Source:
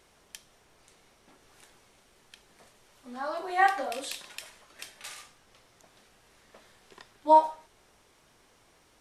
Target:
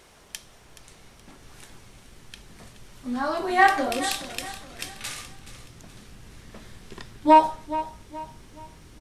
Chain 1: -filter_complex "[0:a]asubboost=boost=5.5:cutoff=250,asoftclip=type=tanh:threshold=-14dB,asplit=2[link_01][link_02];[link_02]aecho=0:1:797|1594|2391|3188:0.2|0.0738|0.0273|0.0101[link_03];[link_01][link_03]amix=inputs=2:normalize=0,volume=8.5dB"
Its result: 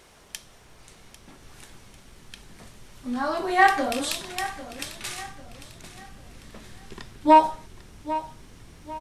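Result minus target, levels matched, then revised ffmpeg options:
echo 373 ms late
-filter_complex "[0:a]asubboost=boost=5.5:cutoff=250,asoftclip=type=tanh:threshold=-14dB,asplit=2[link_01][link_02];[link_02]aecho=0:1:424|848|1272|1696:0.2|0.0738|0.0273|0.0101[link_03];[link_01][link_03]amix=inputs=2:normalize=0,volume=8.5dB"

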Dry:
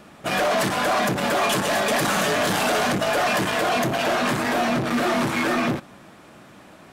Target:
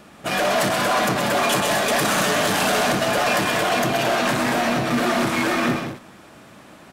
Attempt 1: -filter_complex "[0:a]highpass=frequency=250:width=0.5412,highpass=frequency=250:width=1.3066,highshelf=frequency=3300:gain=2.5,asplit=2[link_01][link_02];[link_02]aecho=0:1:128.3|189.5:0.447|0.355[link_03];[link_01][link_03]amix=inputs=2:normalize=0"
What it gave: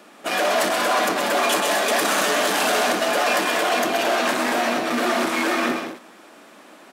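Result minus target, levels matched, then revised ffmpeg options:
250 Hz band −2.5 dB
-filter_complex "[0:a]highshelf=frequency=3300:gain=2.5,asplit=2[link_01][link_02];[link_02]aecho=0:1:128.3|189.5:0.447|0.355[link_03];[link_01][link_03]amix=inputs=2:normalize=0"

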